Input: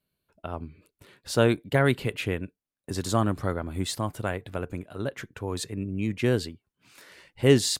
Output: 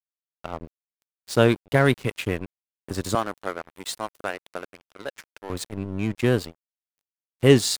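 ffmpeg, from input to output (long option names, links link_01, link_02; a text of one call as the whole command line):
ffmpeg -i in.wav -filter_complex "[0:a]asettb=1/sr,asplit=3[link_01][link_02][link_03];[link_01]atrim=end=3.154[link_04];[link_02]atrim=start=3.15:end=5.5,asetpts=PTS-STARTPTS,afade=type=in:duration=0.004:curve=qsin,afade=type=out:start_time=2.346:duration=0.004:curve=qsin,highpass=440[link_05];[link_03]atrim=start=5.496[link_06];[link_04][link_05]acrossfade=duration=0.004:curve1=hsin:curve2=qsin[link_07];[link_07][link_06]acrossfade=duration=0.004:curve1=qsin:curve2=hsin,aeval=exprs='sgn(val(0))*max(abs(val(0))-0.0133,0)':channel_layout=same,volume=4dB" out.wav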